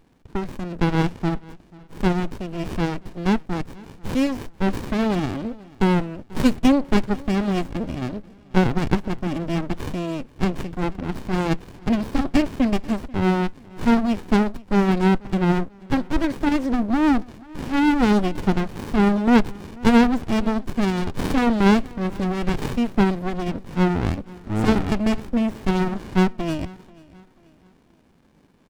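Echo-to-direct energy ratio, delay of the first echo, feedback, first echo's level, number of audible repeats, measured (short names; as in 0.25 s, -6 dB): -22.0 dB, 0.487 s, 41%, -23.0 dB, 2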